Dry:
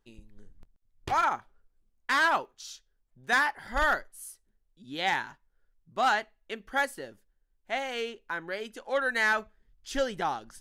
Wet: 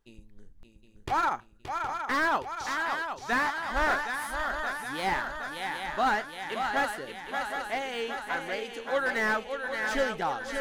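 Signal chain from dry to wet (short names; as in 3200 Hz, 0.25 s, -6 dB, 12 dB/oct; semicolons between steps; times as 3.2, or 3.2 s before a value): swung echo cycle 0.766 s, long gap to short 3:1, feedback 60%, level -7 dB; slew limiter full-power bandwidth 98 Hz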